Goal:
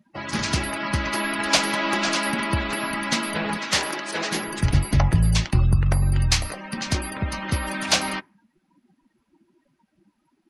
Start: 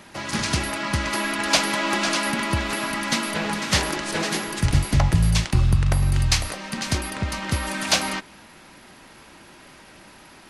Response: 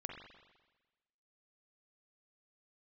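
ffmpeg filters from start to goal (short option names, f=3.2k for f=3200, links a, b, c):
-filter_complex "[0:a]asettb=1/sr,asplit=3[a][b][c];[a]atrim=end=3.574[d];[b]atrim=start=3.57:end=4.32,asetpts=PTS-STARTPTS,afade=t=in:d=0.004:c=qsin,afade=t=out:st=0.746:d=0.004:c=qsin,highpass=f=390:p=1[e];[c]atrim=start=4.316[f];[d][e]acrossfade=d=0.004:c1=hsin:c2=qsin[g];[g][f]acrossfade=d=0.004:c1=qsin:c2=hsin,afftdn=nr=30:nf=-36"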